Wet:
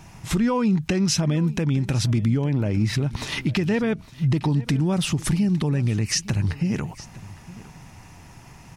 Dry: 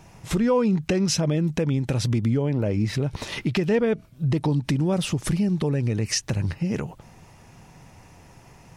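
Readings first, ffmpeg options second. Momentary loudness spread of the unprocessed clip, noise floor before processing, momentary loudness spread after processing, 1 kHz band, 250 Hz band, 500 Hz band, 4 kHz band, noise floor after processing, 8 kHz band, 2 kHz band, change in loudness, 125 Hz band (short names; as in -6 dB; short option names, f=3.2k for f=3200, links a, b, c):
6 LU, -51 dBFS, 11 LU, +1.0 dB, +1.5 dB, -4.0 dB, +2.0 dB, -46 dBFS, +2.0 dB, +2.5 dB, +1.0 dB, +2.0 dB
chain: -filter_complex "[0:a]equalizer=f=500:t=o:w=0.82:g=-8,asplit=2[a][b];[b]alimiter=limit=-22.5dB:level=0:latency=1:release=109,volume=-1dB[c];[a][c]amix=inputs=2:normalize=0,aecho=1:1:859:0.112,volume=-1dB"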